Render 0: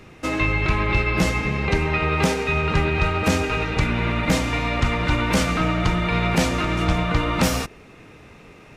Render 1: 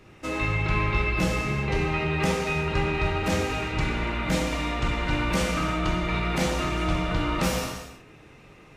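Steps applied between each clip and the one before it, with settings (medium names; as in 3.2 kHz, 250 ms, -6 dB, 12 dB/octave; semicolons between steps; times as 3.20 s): gated-style reverb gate 390 ms falling, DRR -1 dB; trim -8 dB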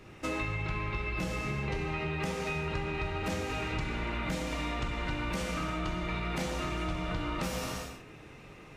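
compression 10:1, threshold -30 dBFS, peak gain reduction 11.5 dB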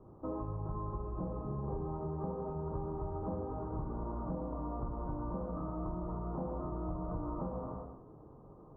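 elliptic low-pass 1.1 kHz, stop band 50 dB; trim -3 dB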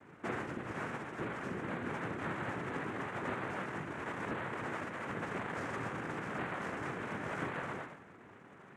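tilt shelf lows -8.5 dB, about 910 Hz; band-stop 1.1 kHz, Q 8.1; noise-vocoded speech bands 3; trim +5.5 dB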